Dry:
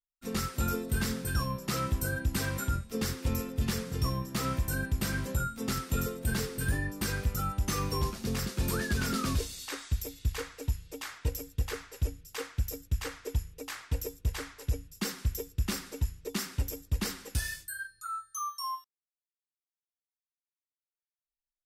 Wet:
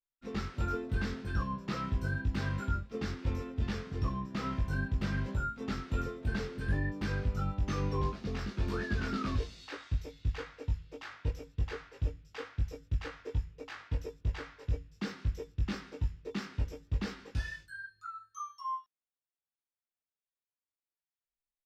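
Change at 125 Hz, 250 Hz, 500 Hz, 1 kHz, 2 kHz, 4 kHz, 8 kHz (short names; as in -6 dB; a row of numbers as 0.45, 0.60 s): -2.0, -2.5, -3.0, -2.5, -3.5, -8.5, -18.5 dB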